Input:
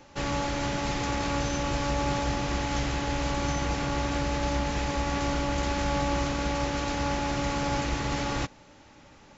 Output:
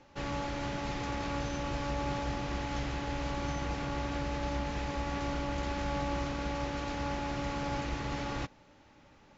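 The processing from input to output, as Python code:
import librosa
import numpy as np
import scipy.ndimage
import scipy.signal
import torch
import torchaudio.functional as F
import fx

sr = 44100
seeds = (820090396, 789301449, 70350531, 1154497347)

y = fx.air_absorb(x, sr, metres=81.0)
y = y * librosa.db_to_amplitude(-6.0)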